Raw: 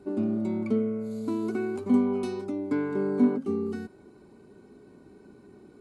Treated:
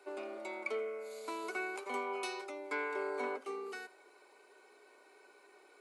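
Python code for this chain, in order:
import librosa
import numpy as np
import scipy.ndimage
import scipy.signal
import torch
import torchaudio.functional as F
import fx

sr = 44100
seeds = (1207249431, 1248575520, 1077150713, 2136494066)

y = scipy.signal.sosfilt(scipy.signal.bessel(6, 770.0, 'highpass', norm='mag', fs=sr, output='sos'), x)
y = fx.peak_eq(y, sr, hz=2300.0, db=6.5, octaves=0.47)
y = y + 10.0 ** (-21.0 / 20.0) * np.pad(y, (int(82 * sr / 1000.0), 0))[:len(y)]
y = y * 10.0 ** (2.5 / 20.0)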